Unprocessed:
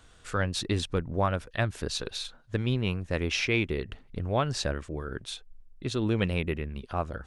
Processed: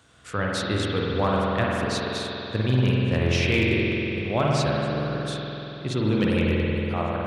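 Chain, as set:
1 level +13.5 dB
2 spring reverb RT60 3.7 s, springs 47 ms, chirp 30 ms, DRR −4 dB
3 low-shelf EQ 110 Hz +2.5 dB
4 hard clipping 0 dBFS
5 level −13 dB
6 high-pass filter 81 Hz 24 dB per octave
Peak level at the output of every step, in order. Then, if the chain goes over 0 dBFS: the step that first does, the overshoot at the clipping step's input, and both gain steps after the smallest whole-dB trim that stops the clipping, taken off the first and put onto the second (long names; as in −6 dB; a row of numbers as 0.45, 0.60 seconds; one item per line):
+2.0, +4.5, +5.5, 0.0, −13.0, −9.0 dBFS
step 1, 5.5 dB
step 1 +7.5 dB, step 5 −7 dB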